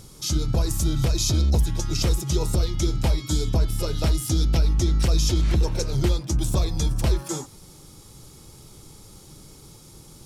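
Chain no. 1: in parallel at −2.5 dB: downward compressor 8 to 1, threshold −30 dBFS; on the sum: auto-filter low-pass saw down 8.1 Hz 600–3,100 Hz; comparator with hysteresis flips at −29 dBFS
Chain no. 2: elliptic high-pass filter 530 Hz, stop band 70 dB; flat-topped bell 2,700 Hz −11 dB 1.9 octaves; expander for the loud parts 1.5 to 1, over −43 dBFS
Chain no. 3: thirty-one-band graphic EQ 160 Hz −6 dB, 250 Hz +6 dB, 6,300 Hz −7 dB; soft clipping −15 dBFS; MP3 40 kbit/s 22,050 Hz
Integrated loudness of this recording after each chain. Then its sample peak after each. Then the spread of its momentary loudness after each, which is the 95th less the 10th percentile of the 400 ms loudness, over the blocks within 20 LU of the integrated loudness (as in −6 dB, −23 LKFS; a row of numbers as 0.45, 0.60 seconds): −24.0, −37.5, −26.5 LKFS; −15.0, −17.0, −15.0 dBFS; 1, 8, 4 LU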